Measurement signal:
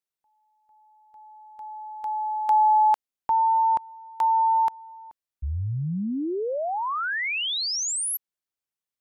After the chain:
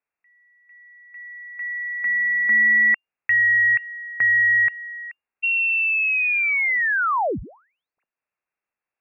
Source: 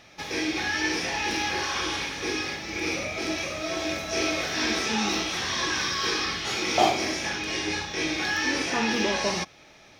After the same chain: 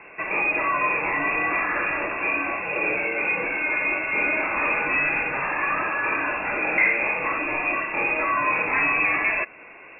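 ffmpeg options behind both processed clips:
ffmpeg -i in.wav -filter_complex "[0:a]asplit=2[link_01][link_02];[link_02]acompressor=threshold=-30dB:ratio=6:attack=6.1:release=242:knee=6:detection=peak,volume=1dB[link_03];[link_01][link_03]amix=inputs=2:normalize=0,asoftclip=type=tanh:threshold=-16dB,lowpass=frequency=2400:width_type=q:width=0.5098,lowpass=frequency=2400:width_type=q:width=0.6013,lowpass=frequency=2400:width_type=q:width=0.9,lowpass=frequency=2400:width_type=q:width=2.563,afreqshift=-2800,volume=3dB" out.wav

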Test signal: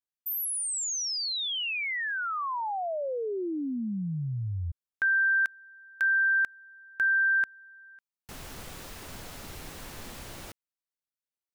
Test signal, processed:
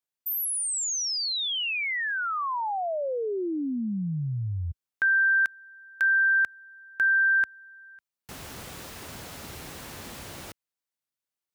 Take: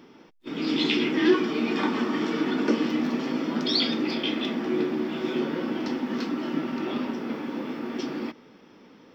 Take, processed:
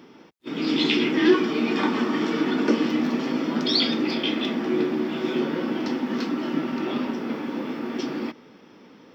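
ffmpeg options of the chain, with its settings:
ffmpeg -i in.wav -af "highpass=61,volume=2.5dB" out.wav

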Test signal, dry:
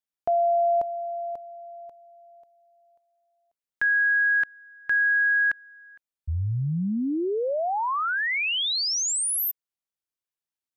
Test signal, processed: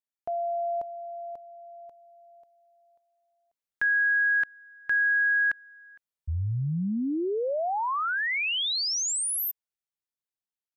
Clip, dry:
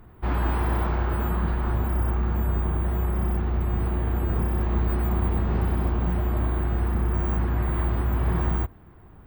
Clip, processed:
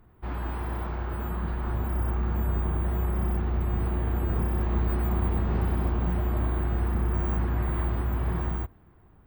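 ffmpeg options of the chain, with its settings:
ffmpeg -i in.wav -af "dynaudnorm=framelen=480:gausssize=7:maxgain=6dB,volume=-8dB" out.wav

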